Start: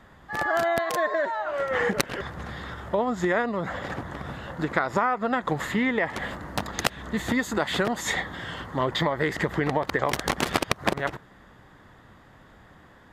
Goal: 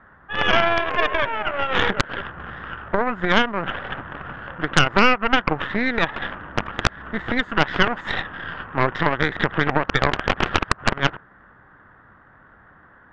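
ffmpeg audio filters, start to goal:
ffmpeg -i in.wav -af "lowpass=frequency=1500:width_type=q:width=3.6,aeval=exprs='0.891*(cos(1*acos(clip(val(0)/0.891,-1,1)))-cos(1*PI/2))+0.355*(cos(6*acos(clip(val(0)/0.891,-1,1)))-cos(6*PI/2))':channel_layout=same,volume=-2.5dB" out.wav

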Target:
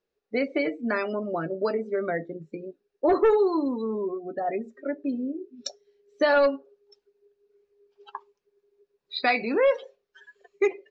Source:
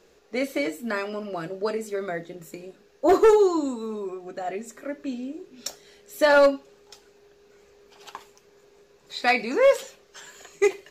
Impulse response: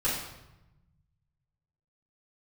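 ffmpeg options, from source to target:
-af "lowpass=frequency=5800:width=0.5412,lowpass=frequency=5800:width=1.3066,afftdn=noise_reduction=29:noise_floor=-36,acompressor=threshold=-27dB:ratio=2,volume=3.5dB"

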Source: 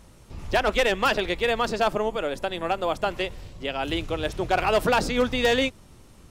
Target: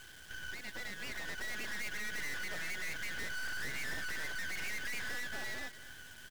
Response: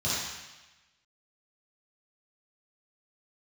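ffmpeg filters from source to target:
-af "afftfilt=real='real(if(lt(b,272),68*(eq(floor(b/68),0)*2+eq(floor(b/68),1)*0+eq(floor(b/68),2)*3+eq(floor(b/68),3)*1)+mod(b,68),b),0)':imag='imag(if(lt(b,272),68*(eq(floor(b/68),0)*2+eq(floor(b/68),1)*0+eq(floor(b/68),2)*3+eq(floor(b/68),3)*1)+mod(b,68),b),0)':win_size=2048:overlap=0.75,lowpass=3500,highshelf=frequency=2500:gain=-9,acompressor=threshold=-34dB:ratio=8,alimiter=level_in=8.5dB:limit=-24dB:level=0:latency=1:release=294,volume=-8.5dB,dynaudnorm=framelen=270:gausssize=11:maxgain=16dB,aresample=16000,acrusher=bits=2:mode=log:mix=0:aa=0.000001,aresample=44100,aeval=exprs='(tanh(44.7*val(0)+0.2)-tanh(0.2))/44.7':channel_layout=same,acrusher=bits=6:dc=4:mix=0:aa=0.000001,aecho=1:1:231:0.15,volume=2dB"

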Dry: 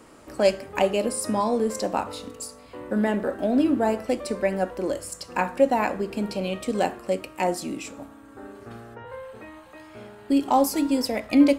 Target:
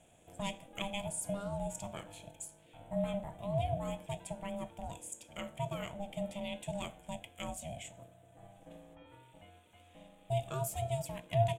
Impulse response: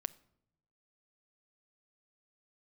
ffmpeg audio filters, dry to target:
-af "firequalizer=gain_entry='entry(200,0);entry(630,-16);entry(1300,-12);entry(1900,-15);entry(2900,6);entry(4500,-21);entry(7100,2);entry(12000,-2)':delay=0.05:min_phase=1,aeval=exprs='val(0)*sin(2*PI*400*n/s)':channel_layout=same,volume=-6.5dB"

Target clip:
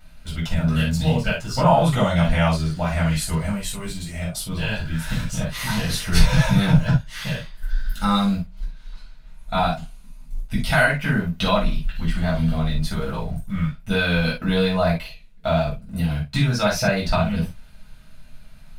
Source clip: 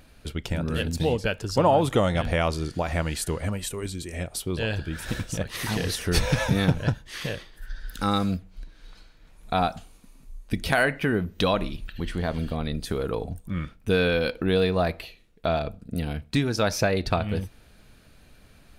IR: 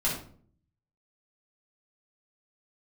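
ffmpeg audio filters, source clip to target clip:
-filter_complex "[0:a]equalizer=frequency=360:width=1.7:gain=-12,asplit=2[link_01][link_02];[link_02]aeval=exprs='val(0)*gte(abs(val(0)),0.0178)':channel_layout=same,volume=-11dB[link_03];[link_01][link_03]amix=inputs=2:normalize=0[link_04];[1:a]atrim=start_sample=2205,atrim=end_sample=3528[link_05];[link_04][link_05]afir=irnorm=-1:irlink=0,volume=-5.5dB"

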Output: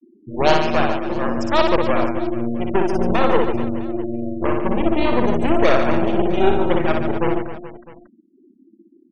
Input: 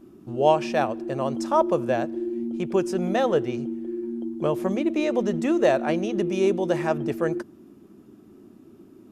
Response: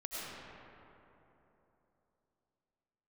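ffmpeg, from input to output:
-af "aeval=exprs='0.501*(cos(1*acos(clip(val(0)/0.501,-1,1)))-cos(1*PI/2))+0.0794*(cos(2*acos(clip(val(0)/0.501,-1,1)))-cos(2*PI/2))+0.0126*(cos(5*acos(clip(val(0)/0.501,-1,1)))-cos(5*PI/2))+0.126*(cos(8*acos(clip(val(0)/0.501,-1,1)))-cos(8*PI/2))':channel_layout=same,afftfilt=real='re*gte(hypot(re,im),0.0398)':imag='im*gte(hypot(re,im),0.0398)':win_size=1024:overlap=0.75,aecho=1:1:60|144|261.6|426.2|656.7:0.631|0.398|0.251|0.158|0.1"

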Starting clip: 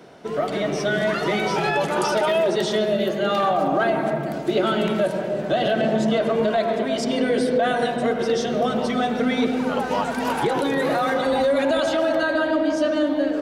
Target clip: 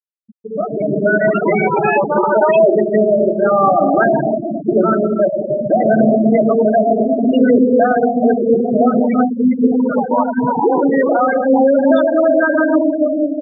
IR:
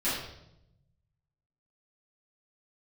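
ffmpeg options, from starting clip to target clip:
-filter_complex "[0:a]asettb=1/sr,asplit=3[link_01][link_02][link_03];[link_01]atrim=end=9.034[link_04];[link_02]atrim=start=9.03:end=9.44,asetpts=PTS-STARTPTS,afade=type=in:duration=0.004:curve=qsin,afade=type=out:start_time=0.406:duration=0.004:curve=qsin,acrossover=split=160[link_05][link_06];[link_06]acompressor=threshold=-25dB:ratio=10[link_07];[link_05][link_07]amix=inputs=2:normalize=0[link_08];[link_03]atrim=start=9.436[link_09];[link_04][link_08]acrossfade=duration=0.004:curve1=hsin:curve2=qsin[link_10];[link_10][link_09]acrossfade=duration=0.004:curve1=qsin:curve2=hsin,equalizer=frequency=250:width_type=o:width=0.33:gain=8,equalizer=frequency=5000:width_type=o:width=0.33:gain=-9,equalizer=frequency=8000:width_type=o:width=0.33:gain=-11,acrossover=split=210|5700[link_11][link_12][link_13];[link_13]adelay=50[link_14];[link_12]adelay=200[link_15];[link_11][link_15][link_14]amix=inputs=3:normalize=0,asplit=2[link_16][link_17];[1:a]atrim=start_sample=2205,lowshelf=frequency=60:gain=-8.5[link_18];[link_17][link_18]afir=irnorm=-1:irlink=0,volume=-20.5dB[link_19];[link_16][link_19]amix=inputs=2:normalize=0,afftfilt=real='re*gte(hypot(re,im),0.224)':imag='im*gte(hypot(re,im),0.224)':win_size=1024:overlap=0.75,dynaudnorm=framelen=120:gausssize=13:maxgain=11.5dB"

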